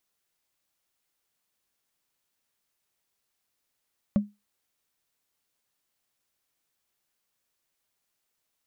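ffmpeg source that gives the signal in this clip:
-f lavfi -i "aevalsrc='0.178*pow(10,-3*t/0.22)*sin(2*PI*206*t)+0.0501*pow(10,-3*t/0.065)*sin(2*PI*567.9*t)+0.0141*pow(10,-3*t/0.029)*sin(2*PI*1113.2*t)+0.00398*pow(10,-3*t/0.016)*sin(2*PI*1840.2*t)+0.00112*pow(10,-3*t/0.01)*sin(2*PI*2748*t)':d=0.45:s=44100"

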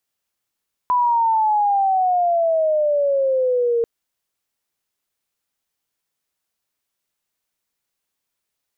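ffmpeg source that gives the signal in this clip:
-f lavfi -i "aevalsrc='pow(10,(-14-1.5*t/2.94)/20)*sin(2*PI*1000*2.94/log(460/1000)*(exp(log(460/1000)*t/2.94)-1))':d=2.94:s=44100"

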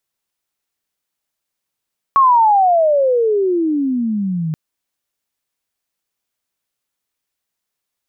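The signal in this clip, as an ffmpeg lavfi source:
-f lavfi -i "aevalsrc='pow(10,(-7-10.5*t/2.38)/20)*sin(2*PI*1120*2.38/(-34.5*log(2)/12)*(exp(-34.5*log(2)/12*t/2.38)-1))':d=2.38:s=44100"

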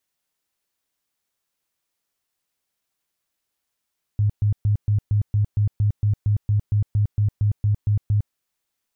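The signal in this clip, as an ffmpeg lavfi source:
-f lavfi -i "aevalsrc='0.168*sin(2*PI*104*mod(t,0.23))*lt(mod(t,0.23),11/104)':d=4.14:s=44100"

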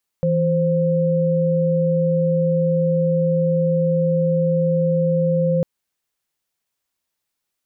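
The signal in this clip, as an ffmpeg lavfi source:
-f lavfi -i "aevalsrc='0.126*(sin(2*PI*164.81*t)+sin(2*PI*523.25*t))':d=5.4:s=44100"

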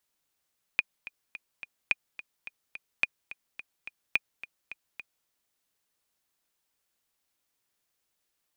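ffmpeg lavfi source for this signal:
-f lavfi -i "aevalsrc='pow(10,(-10-16.5*gte(mod(t,4*60/214),60/214))/20)*sin(2*PI*2450*mod(t,60/214))*exp(-6.91*mod(t,60/214)/0.03)':d=4.48:s=44100"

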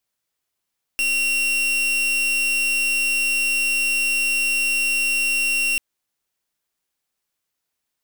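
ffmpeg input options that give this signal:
-f lavfi -i "aevalsrc='0.0944*(2*lt(mod(2740*t,1),0.42)-1)':d=4.79:s=44100"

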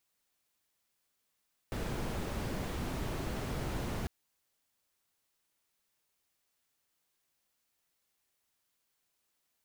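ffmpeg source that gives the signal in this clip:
-f lavfi -i "anoisesrc=c=brown:a=0.0741:d=2.35:r=44100:seed=1"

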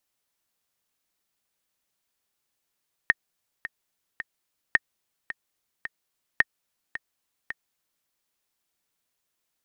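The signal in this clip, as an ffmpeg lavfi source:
-f lavfi -i "aevalsrc='pow(10,(-4.5-14.5*gte(mod(t,3*60/109),60/109))/20)*sin(2*PI*1840*mod(t,60/109))*exp(-6.91*mod(t,60/109)/0.03)':d=4.95:s=44100"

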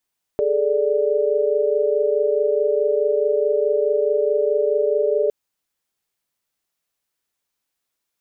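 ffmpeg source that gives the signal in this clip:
-f lavfi -i "aevalsrc='0.0944*(sin(2*PI*415.3*t)+sin(2*PI*440*t)+sin(2*PI*587.33*t))':d=4.91:s=44100"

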